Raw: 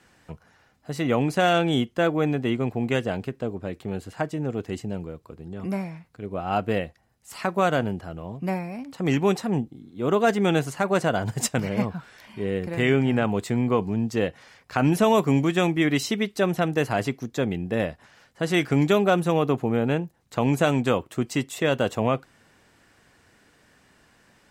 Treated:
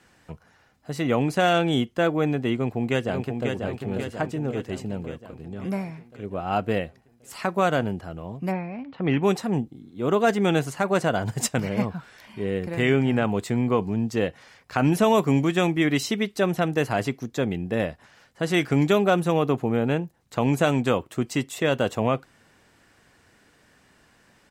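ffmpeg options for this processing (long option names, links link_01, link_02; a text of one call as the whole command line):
ffmpeg -i in.wav -filter_complex "[0:a]asplit=2[link_01][link_02];[link_02]afade=type=in:start_time=2.54:duration=0.01,afade=type=out:start_time=3.54:duration=0.01,aecho=0:1:540|1080|1620|2160|2700|3240|3780|4320:0.562341|0.337405|0.202443|0.121466|0.0728794|0.0437277|0.0262366|0.015742[link_03];[link_01][link_03]amix=inputs=2:normalize=0,asplit=3[link_04][link_05][link_06];[link_04]afade=type=out:start_time=8.51:duration=0.02[link_07];[link_05]lowpass=frequency=3400:width=0.5412,lowpass=frequency=3400:width=1.3066,afade=type=in:start_time=8.51:duration=0.02,afade=type=out:start_time=9.22:duration=0.02[link_08];[link_06]afade=type=in:start_time=9.22:duration=0.02[link_09];[link_07][link_08][link_09]amix=inputs=3:normalize=0" out.wav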